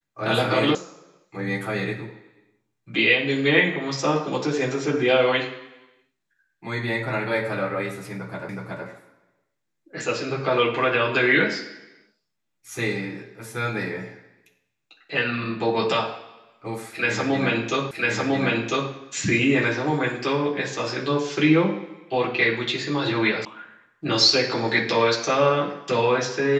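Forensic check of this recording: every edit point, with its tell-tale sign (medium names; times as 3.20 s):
0.75 s: sound stops dead
8.49 s: repeat of the last 0.37 s
17.91 s: repeat of the last 1 s
23.45 s: sound stops dead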